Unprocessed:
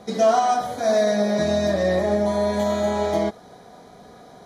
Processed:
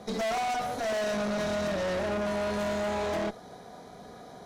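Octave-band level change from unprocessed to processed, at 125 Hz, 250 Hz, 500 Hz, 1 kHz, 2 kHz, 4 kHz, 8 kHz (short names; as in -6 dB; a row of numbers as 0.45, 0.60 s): -9.0, -9.0, -10.0, -9.0, -3.0, -5.5, -7.0 dB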